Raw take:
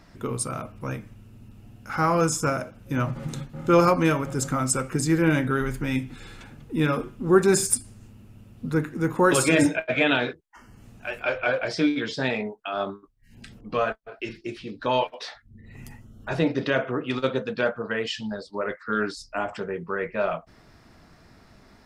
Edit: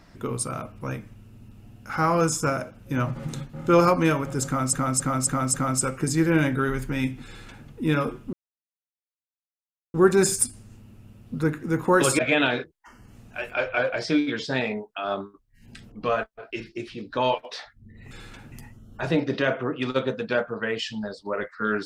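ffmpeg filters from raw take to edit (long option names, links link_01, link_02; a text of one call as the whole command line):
ffmpeg -i in.wav -filter_complex "[0:a]asplit=9[link_01][link_02][link_03][link_04][link_05][link_06][link_07][link_08][link_09];[link_01]atrim=end=4.732[link_10];[link_02]atrim=start=4.458:end=4.732[link_11];[link_03]atrim=start=4.458:end=4.732[link_12];[link_04]atrim=start=4.458:end=4.732[link_13];[link_05]atrim=start=4.458:end=7.25,asetpts=PTS-STARTPTS,afade=type=out:start_time=2.788:duration=0.004:curve=hsin,apad=pad_dur=1.61[link_14];[link_06]atrim=start=7.25:end=9.502,asetpts=PTS-STARTPTS,afade=type=in:duration=0.004:curve=hsin[link_15];[link_07]atrim=start=9.878:end=15.802[link_16];[link_08]atrim=start=6.178:end=6.592[link_17];[link_09]atrim=start=15.798[link_18];[link_10][link_11]acrossfade=duration=0.004:curve1=hsin:curve2=hsin[link_19];[link_19][link_12]acrossfade=duration=0.004:curve1=hsin:curve2=hsin[link_20];[link_20][link_13]acrossfade=duration=0.004:curve1=hsin:curve2=hsin[link_21];[link_14][link_15]concat=n=2:v=0:a=1[link_22];[link_21][link_22]acrossfade=duration=0.004:curve1=hsin:curve2=hsin[link_23];[link_23][link_16]acrossfade=duration=0.004:curve1=hsin:curve2=hsin[link_24];[link_24][link_17]acrossfade=duration=0.004:curve1=hsin:curve2=hsin[link_25];[link_25][link_18]acrossfade=duration=0.004:curve1=hsin:curve2=hsin" out.wav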